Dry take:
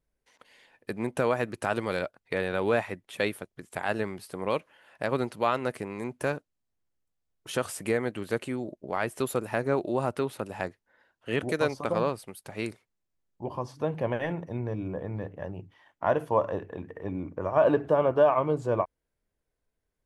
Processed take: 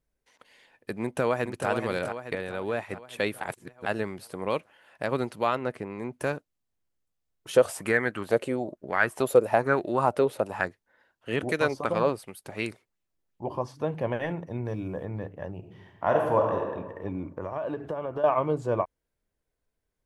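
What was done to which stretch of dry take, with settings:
1.02–1.69 echo throw 0.43 s, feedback 55%, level -6.5 dB
2.35–2.9 gain -5 dB
3.41–3.86 reverse
5.55–6.13 LPF 2400 Hz 6 dB/oct
7.56–10.65 LFO bell 1.1 Hz 490–1800 Hz +13 dB
11.4–13.69 LFO bell 2.8 Hz 310–3000 Hz +7 dB
14.65–15.05 high shelf 4100 Hz +11.5 dB
15.58–16.64 reverb throw, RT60 1.3 s, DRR 0.5 dB
17.29–18.24 compressor 5:1, threshold -29 dBFS

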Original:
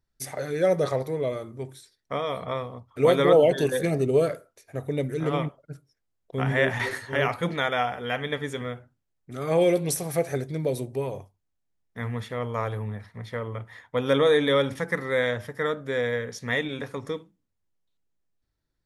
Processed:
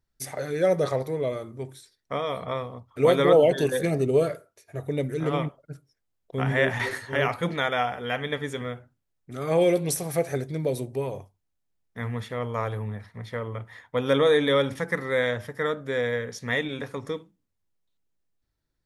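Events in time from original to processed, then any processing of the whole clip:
4.23–4.86 notch comb 260 Hz

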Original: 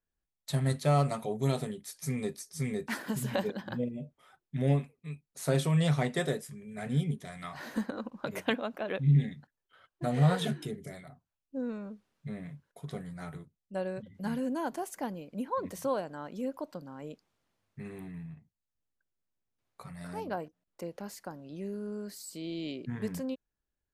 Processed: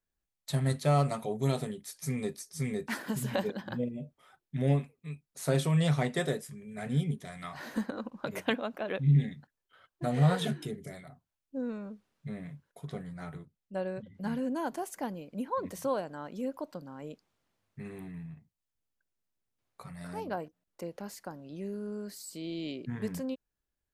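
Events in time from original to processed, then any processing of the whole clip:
12.87–14.56 high shelf 6500 Hz -7.5 dB

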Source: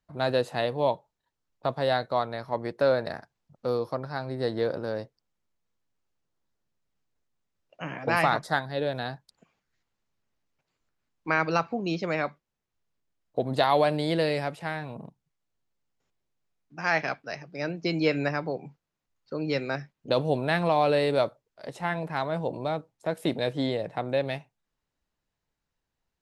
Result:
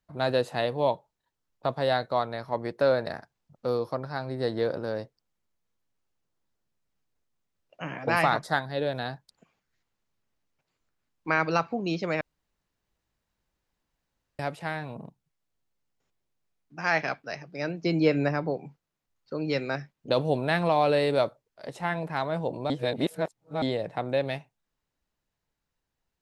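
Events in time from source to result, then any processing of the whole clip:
12.21–14.39 room tone
17.86–18.54 tilt shelf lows +3.5 dB
22.7–23.62 reverse

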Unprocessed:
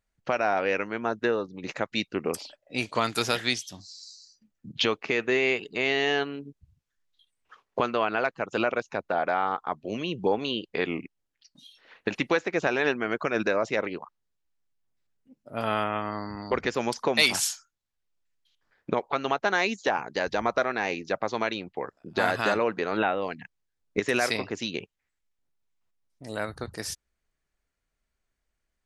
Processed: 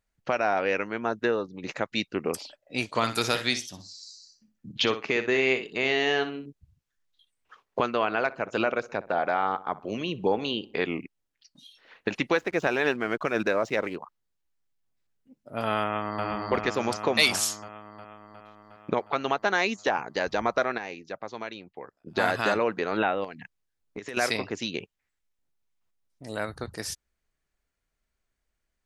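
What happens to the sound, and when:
2.89–6.46 feedback echo 61 ms, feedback 17%, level -11 dB
7.87–10.85 darkening echo 63 ms, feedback 50%, low-pass 2100 Hz, level -18 dB
12.35–13.96 backlash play -46 dBFS
15.82–16.24 echo throw 0.36 s, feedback 70%, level -2 dB
20.78–22.07 gain -8.5 dB
23.24–24.17 compressor 5:1, threshold -34 dBFS

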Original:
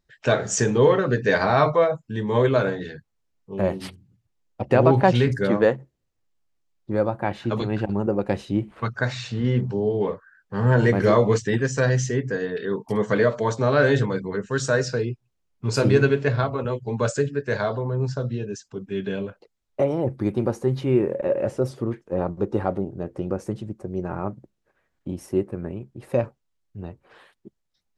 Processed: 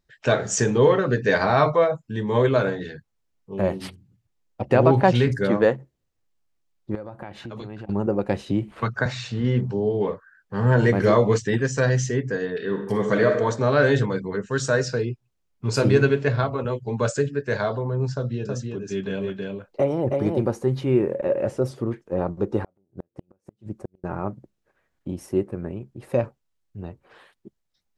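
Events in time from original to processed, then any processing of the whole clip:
6.95–7.89 compressor 5:1, threshold -33 dBFS
8.46–9.06 three-band squash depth 70%
12.56–13.35 reverb throw, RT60 0.91 s, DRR 4.5 dB
18.13–20.42 echo 0.321 s -3.5 dB
22.61–24.04 flipped gate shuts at -18 dBFS, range -42 dB

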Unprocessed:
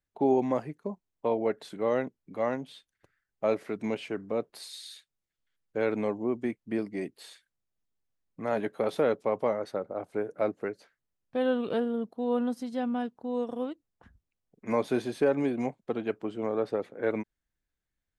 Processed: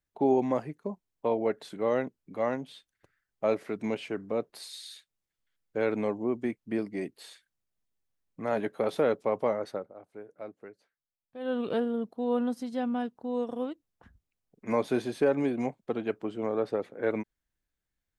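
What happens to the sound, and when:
9.7–11.61 dip -13.5 dB, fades 0.22 s

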